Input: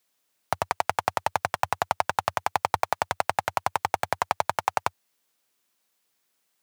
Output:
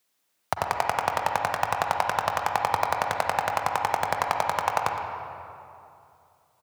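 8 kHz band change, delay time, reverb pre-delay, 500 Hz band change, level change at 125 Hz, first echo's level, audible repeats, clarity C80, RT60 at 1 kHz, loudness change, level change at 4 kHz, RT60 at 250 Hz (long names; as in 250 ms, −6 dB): 0.0 dB, 114 ms, 38 ms, +1.5 dB, +1.0 dB, −13.0 dB, 1, 4.0 dB, 2.5 s, +1.0 dB, +1.0 dB, 2.8 s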